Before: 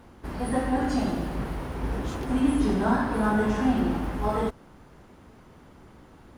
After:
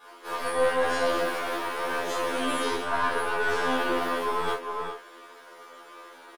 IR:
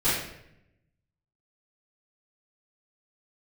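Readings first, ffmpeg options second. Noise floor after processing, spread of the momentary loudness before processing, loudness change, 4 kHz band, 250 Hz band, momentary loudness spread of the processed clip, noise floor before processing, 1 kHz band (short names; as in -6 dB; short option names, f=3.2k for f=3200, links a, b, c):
-49 dBFS, 9 LU, -1.0 dB, +9.0 dB, -11.0 dB, 21 LU, -52 dBFS, +3.0 dB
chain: -filter_complex "[0:a]equalizer=f=820:t=o:w=0.28:g=-11,asplit=2[a][b];[b]adelay=408.2,volume=-10dB,highshelf=f=4k:g=-9.18[c];[a][c]amix=inputs=2:normalize=0,acrossover=split=2700[d][e];[e]acompressor=threshold=-43dB:ratio=4:attack=1:release=60[f];[d][f]amix=inputs=2:normalize=0,highpass=f=540:w=0.5412,highpass=f=540:w=1.3066[g];[1:a]atrim=start_sample=2205,atrim=end_sample=3969[h];[g][h]afir=irnorm=-1:irlink=0,areverse,acompressor=threshold=-21dB:ratio=16,areverse,aeval=exprs='(tanh(11.2*val(0)+0.5)-tanh(0.5))/11.2':c=same,afftfilt=real='re*2*eq(mod(b,4),0)':imag='im*2*eq(mod(b,4),0)':win_size=2048:overlap=0.75,volume=3.5dB"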